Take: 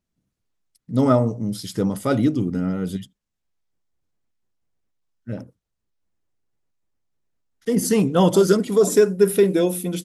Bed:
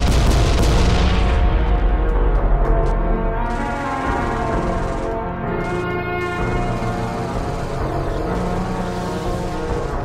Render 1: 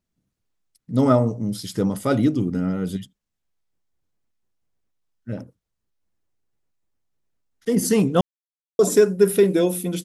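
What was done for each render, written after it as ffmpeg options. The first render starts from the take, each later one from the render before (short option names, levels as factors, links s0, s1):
-filter_complex "[0:a]asplit=3[s0][s1][s2];[s0]atrim=end=8.21,asetpts=PTS-STARTPTS,afade=t=out:st=8.206:d=0.004:c=hsin[s3];[s1]atrim=start=8.21:end=8.79,asetpts=PTS-STARTPTS,volume=0[s4];[s2]atrim=start=8.79,asetpts=PTS-STARTPTS,afade=t=in:d=0.004:c=hsin[s5];[s3][s4][s5]concat=n=3:v=0:a=1"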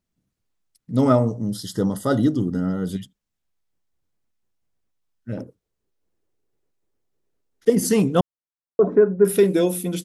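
-filter_complex "[0:a]asettb=1/sr,asplit=3[s0][s1][s2];[s0]atrim=end=1.264[s3];[s1]atrim=start=1.26:end=2.91,asetpts=PTS-STARTPTS,afade=t=in:d=0.004:c=qsin,afade=t=out:st=1.646:d=0.004:c=qsin,asuperstop=centerf=2400:order=12:qfactor=2.8[s4];[s2]atrim=start=2.906[s5];[s3][s4]acrossfade=d=0.004:c1=hsin:c2=qsin[s6];[s6][s5]acrossfade=d=0.004:c1=qsin:c2=hsin,asettb=1/sr,asplit=3[s7][s8][s9];[s7]atrim=end=5.374[s10];[s8]atrim=start=5.37:end=7.7,asetpts=PTS-STARTPTS,afade=t=in:d=0.004:c=qsin,afade=t=out:st=2.326:d=0.004:c=qsin,equalizer=f=410:t=o:w=0.97:g=11[s11];[s9]atrim=start=7.696[s12];[s10][s11]acrossfade=d=0.004:c1=hsin:c2=qsin[s13];[s13][s12]acrossfade=d=0.004:c1=qsin:c2=hsin,asettb=1/sr,asplit=3[s14][s15][s16];[s14]atrim=end=8.204[s17];[s15]atrim=start=8.2:end=9.25,asetpts=PTS-STARTPTS,afade=t=in:d=0.004:c=qsin,afade=t=out:st=1.046:d=0.004:c=qsin,lowpass=f=1500:w=0.5412,lowpass=f=1500:w=1.3066[s18];[s16]atrim=start=9.246[s19];[s17][s18]acrossfade=d=0.004:c1=hsin:c2=qsin[s20];[s20][s19]acrossfade=d=0.004:c1=qsin:c2=hsin"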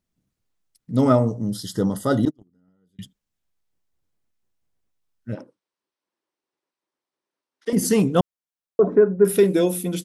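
-filter_complex "[0:a]asettb=1/sr,asplit=3[s0][s1][s2];[s0]atrim=end=2.254[s3];[s1]atrim=start=2.25:end=2.99,asetpts=PTS-STARTPTS,afade=t=in:d=0.004:c=qsin,afade=t=out:st=0.736:d=0.004:c=qsin,agate=range=0.0112:threshold=0.141:ratio=16:release=100:detection=peak[s4];[s2]atrim=start=2.986[s5];[s3][s4]acrossfade=d=0.004:c1=hsin:c2=qsin[s6];[s6][s5]acrossfade=d=0.004:c1=qsin:c2=hsin,asettb=1/sr,asplit=3[s7][s8][s9];[s7]atrim=end=5.354[s10];[s8]atrim=start=5.35:end=7.73,asetpts=PTS-STARTPTS,afade=t=in:d=0.004:c=qsin,afade=t=out:st=2.376:d=0.004:c=qsin,highpass=390,equalizer=f=440:t=q:w=4:g=-10,equalizer=f=700:t=q:w=4:g=-4,equalizer=f=1000:t=q:w=4:g=5,equalizer=f=7000:t=q:w=4:g=-9,lowpass=f=8700:w=0.5412,lowpass=f=8700:w=1.3066[s11];[s9]atrim=start=7.726[s12];[s10][s11]acrossfade=d=0.004:c1=hsin:c2=qsin[s13];[s13][s12]acrossfade=d=0.004:c1=qsin:c2=hsin"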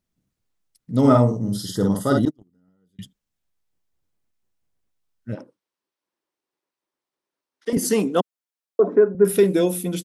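-filter_complex "[0:a]asplit=3[s0][s1][s2];[s0]afade=t=out:st=1.03:d=0.02[s3];[s1]asplit=2[s4][s5];[s5]adelay=50,volume=0.75[s6];[s4][s6]amix=inputs=2:normalize=0,afade=t=in:st=1.03:d=0.02,afade=t=out:st=2.18:d=0.02[s7];[s2]afade=t=in:st=2.18:d=0.02[s8];[s3][s7][s8]amix=inputs=3:normalize=0,asettb=1/sr,asplit=3[s9][s10][s11];[s9]atrim=end=7.774[s12];[s10]atrim=start=7.77:end=9.15,asetpts=PTS-STARTPTS,afade=t=in:d=0.004:c=qsin,afade=t=out:st=1.376:d=0.004:c=qsin,highpass=f=220:w=0.5412,highpass=f=220:w=1.3066[s13];[s11]atrim=start=9.146[s14];[s12][s13]acrossfade=d=0.004:c1=hsin:c2=qsin[s15];[s15][s14]acrossfade=d=0.004:c1=qsin:c2=hsin"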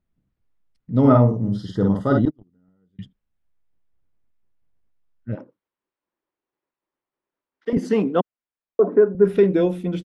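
-af "lowpass=2400,lowshelf=f=76:g=9.5"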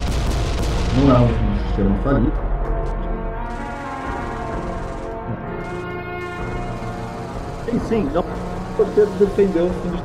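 -filter_complex "[1:a]volume=0.531[s0];[0:a][s0]amix=inputs=2:normalize=0"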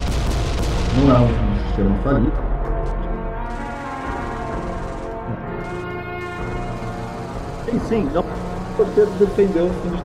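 -af "aecho=1:1:275:0.0944"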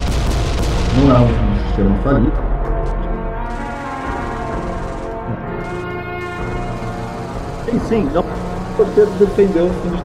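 -af "volume=1.5,alimiter=limit=0.891:level=0:latency=1"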